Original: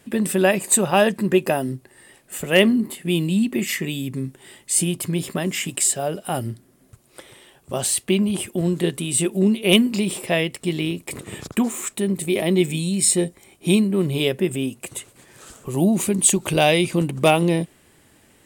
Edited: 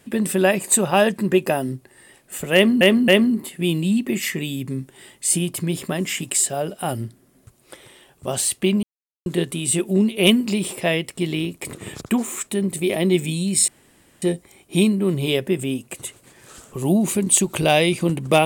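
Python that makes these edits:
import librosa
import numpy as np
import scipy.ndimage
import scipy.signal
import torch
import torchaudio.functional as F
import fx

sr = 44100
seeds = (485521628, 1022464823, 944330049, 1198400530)

y = fx.edit(x, sr, fx.repeat(start_s=2.54, length_s=0.27, count=3),
    fx.silence(start_s=8.29, length_s=0.43),
    fx.insert_room_tone(at_s=13.14, length_s=0.54), tone=tone)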